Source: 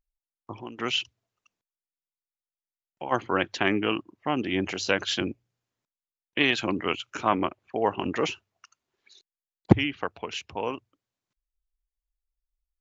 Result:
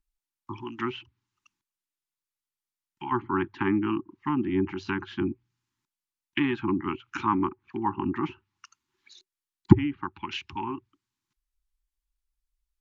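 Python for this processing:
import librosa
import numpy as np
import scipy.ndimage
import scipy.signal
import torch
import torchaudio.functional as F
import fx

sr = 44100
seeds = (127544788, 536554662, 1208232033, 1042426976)

y = fx.env_lowpass_down(x, sr, base_hz=1100.0, full_db=-26.0)
y = scipy.signal.sosfilt(scipy.signal.cheby1(5, 1.0, [380.0, 830.0], 'bandstop', fs=sr, output='sos'), y)
y = F.gain(torch.from_numpy(y), 3.0).numpy()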